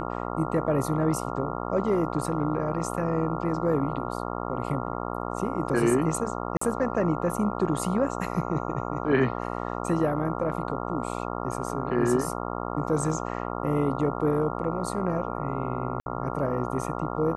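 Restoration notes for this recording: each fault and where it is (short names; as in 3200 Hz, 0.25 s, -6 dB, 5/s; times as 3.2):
buzz 60 Hz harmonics 23 -32 dBFS
6.57–6.61 gap 44 ms
16–16.06 gap 61 ms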